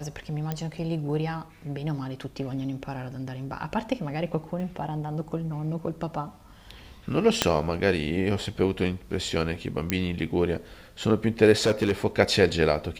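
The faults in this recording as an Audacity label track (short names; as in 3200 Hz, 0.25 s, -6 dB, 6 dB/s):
0.520000	0.520000	pop -16 dBFS
4.600000	4.600000	gap 2 ms
7.420000	7.420000	pop -4 dBFS
9.900000	9.900000	pop -9 dBFS
11.520000	11.920000	clipped -17.5 dBFS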